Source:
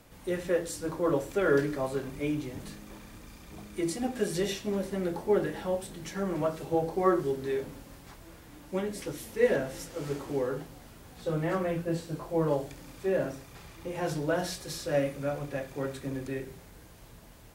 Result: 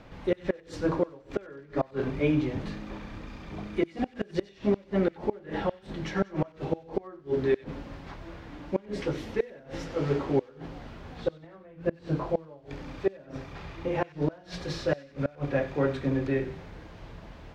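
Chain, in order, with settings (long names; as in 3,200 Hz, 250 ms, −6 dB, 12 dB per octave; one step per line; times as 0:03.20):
tape wow and flutter 23 cents
mains-hum notches 60/120/180/240/300/360/420/480 Hz
gate with flip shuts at −22 dBFS, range −28 dB
high-frequency loss of the air 220 metres
on a send: delay with a high-pass on its return 94 ms, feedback 46%, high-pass 2,100 Hz, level −15 dB
on the sum: level +8.5 dB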